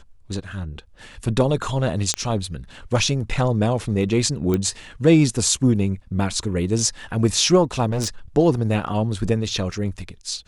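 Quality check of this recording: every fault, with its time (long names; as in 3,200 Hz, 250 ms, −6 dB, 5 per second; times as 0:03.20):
0:02.14: click −6 dBFS
0:04.54: click −10 dBFS
0:07.91–0:08.08: clipping −19 dBFS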